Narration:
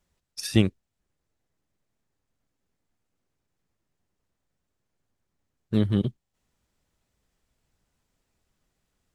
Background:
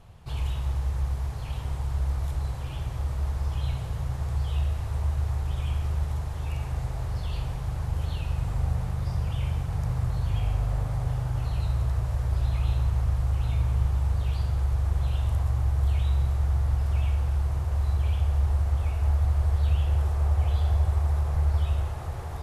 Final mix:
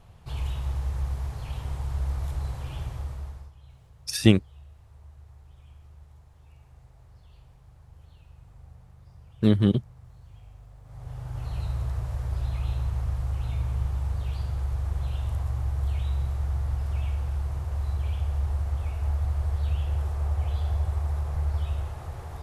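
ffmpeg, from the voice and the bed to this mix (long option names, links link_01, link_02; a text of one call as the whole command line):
ffmpeg -i stem1.wav -i stem2.wav -filter_complex "[0:a]adelay=3700,volume=3dB[link_01];[1:a]volume=17.5dB,afade=type=out:start_time=2.81:duration=0.71:silence=0.0891251,afade=type=in:start_time=10.83:duration=0.74:silence=0.112202[link_02];[link_01][link_02]amix=inputs=2:normalize=0" out.wav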